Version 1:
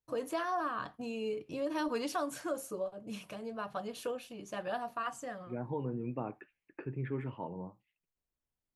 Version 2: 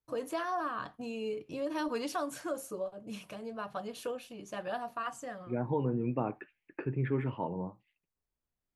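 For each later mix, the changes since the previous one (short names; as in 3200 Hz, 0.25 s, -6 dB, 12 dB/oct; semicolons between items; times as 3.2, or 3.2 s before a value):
second voice +5.5 dB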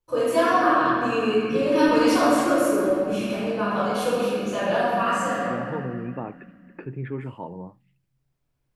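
reverb: on, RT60 2.3 s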